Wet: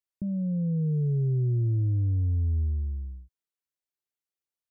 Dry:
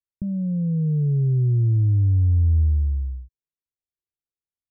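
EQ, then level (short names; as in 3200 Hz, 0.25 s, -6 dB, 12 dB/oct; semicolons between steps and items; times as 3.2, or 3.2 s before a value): low shelf 130 Hz -11.5 dB; 0.0 dB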